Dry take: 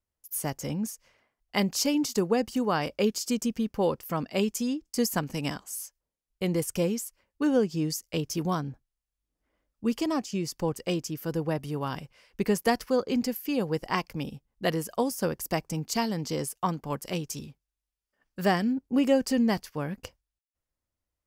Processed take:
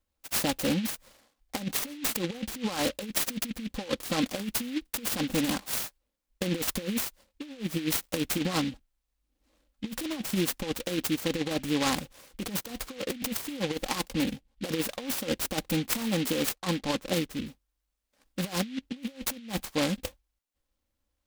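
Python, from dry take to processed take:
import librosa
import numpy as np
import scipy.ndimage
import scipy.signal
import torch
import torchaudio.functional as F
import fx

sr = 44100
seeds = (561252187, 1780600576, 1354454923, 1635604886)

y = fx.lowpass(x, sr, hz=4400.0, slope=12, at=(14.1, 14.69))
y = fx.env_lowpass(y, sr, base_hz=400.0, full_db=-24.0, at=(16.54, 17.45), fade=0.02)
y = y + 0.67 * np.pad(y, (int(3.7 * sr / 1000.0), 0))[:len(y)]
y = fx.over_compress(y, sr, threshold_db=-29.0, ratio=-0.5)
y = fx.noise_mod_delay(y, sr, seeds[0], noise_hz=2700.0, depth_ms=0.14)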